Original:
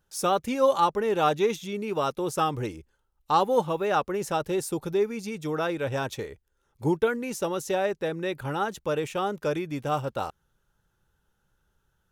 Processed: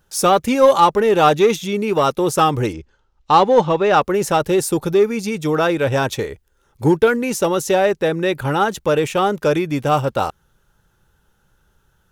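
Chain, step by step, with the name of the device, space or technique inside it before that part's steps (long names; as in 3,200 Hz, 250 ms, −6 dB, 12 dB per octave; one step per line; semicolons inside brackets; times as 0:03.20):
0:02.73–0:04.01: low-pass filter 6,200 Hz 24 dB per octave
parallel distortion (in parallel at −7 dB: hard clipping −23.5 dBFS, distortion −9 dB)
on the sum: level +8 dB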